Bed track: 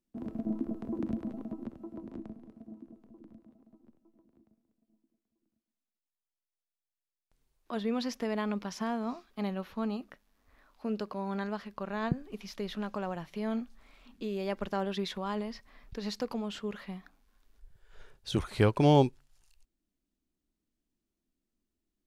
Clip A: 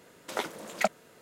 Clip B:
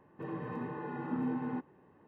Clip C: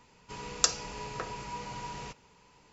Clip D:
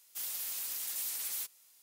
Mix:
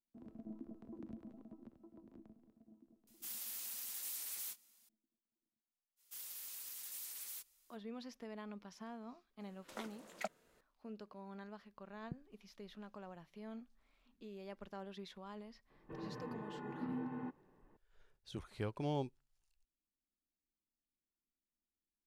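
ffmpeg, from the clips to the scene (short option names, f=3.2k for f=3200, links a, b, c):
-filter_complex "[4:a]asplit=2[a][b];[0:a]volume=-16dB[c];[a]asplit=2[d][e];[e]adelay=25,volume=-10.5dB[f];[d][f]amix=inputs=2:normalize=0[g];[b]equalizer=f=690:w=3.4:g=-4[h];[g]atrim=end=1.82,asetpts=PTS-STARTPTS,volume=-7.5dB,afade=t=in:d=0.004:c=hsin,afade=t=out:st=1.816:d=0.004:c=hsin,adelay=3070[i];[h]atrim=end=1.82,asetpts=PTS-STARTPTS,volume=-10.5dB,afade=t=in:d=0.05,afade=t=out:st=1.77:d=0.05,adelay=5960[j];[1:a]atrim=end=1.21,asetpts=PTS-STARTPTS,volume=-15.5dB,afade=t=in:d=0.004:c=hsin,afade=t=out:st=1.206:d=0.004:c=hsin,adelay=9400[k];[2:a]atrim=end=2.07,asetpts=PTS-STARTPTS,volume=-7.5dB,afade=t=in:d=0.004:c=hsin,afade=t=out:st=2.066:d=0.004:c=hsin,adelay=15700[l];[c][i][j][k][l]amix=inputs=5:normalize=0"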